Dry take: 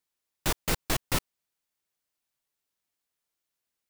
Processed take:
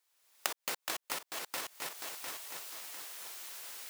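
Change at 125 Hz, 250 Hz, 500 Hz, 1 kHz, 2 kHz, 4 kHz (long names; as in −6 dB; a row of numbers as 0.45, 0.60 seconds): −28.0, −17.0, −8.5, −4.5, −3.5, −3.5 decibels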